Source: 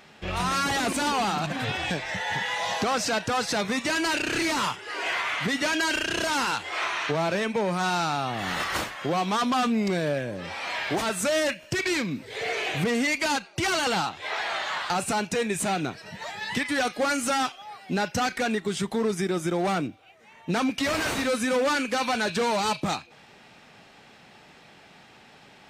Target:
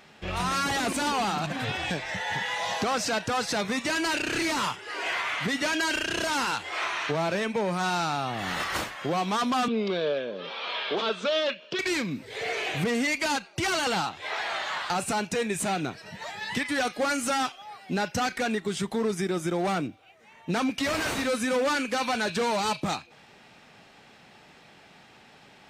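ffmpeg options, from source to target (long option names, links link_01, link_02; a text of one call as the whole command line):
ffmpeg -i in.wav -filter_complex "[0:a]asettb=1/sr,asplit=3[link_01][link_02][link_03];[link_01]atrim=end=9.684[link_04];[link_02]atrim=start=9.68:end=11.79,asetpts=PTS-STARTPTS,afade=type=in:duration=0.004:curve=qsin,afade=type=out:start_time=2.106:duration=0.004:curve=qsin,highpass=frequency=210:width=0.5412,highpass=frequency=210:width=1.3066,equalizer=frequency=300:width_type=q:width=4:gain=-8,equalizer=frequency=450:width_type=q:width=4:gain=8,equalizer=frequency=780:width_type=q:width=4:gain=-5,equalizer=frequency=1200:width_type=q:width=4:gain=4,equalizer=frequency=1900:width_type=q:width=4:gain=-8,equalizer=frequency=3400:width_type=q:width=4:gain=9,lowpass=frequency=4500:width=0.5412,lowpass=frequency=4500:width=1.3066[link_05];[link_03]atrim=start=11.786[link_06];[link_04][link_05]acrossfade=duration=0.004:curve1=hsin:curve2=qsin[link_07];[link_07][link_06]acrossfade=duration=0.004:curve1=qsin:curve2=hsin,volume=-1.5dB" out.wav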